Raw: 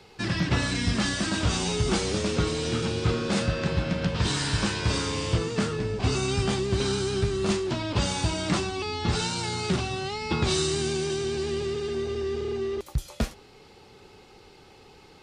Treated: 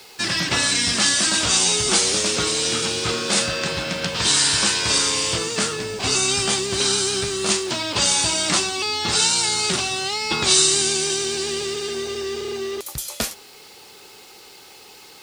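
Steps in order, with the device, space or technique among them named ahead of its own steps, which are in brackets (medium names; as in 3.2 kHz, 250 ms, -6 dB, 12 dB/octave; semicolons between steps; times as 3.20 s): turntable without a phono preamp (RIAA curve recording; white noise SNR 32 dB); trim +5.5 dB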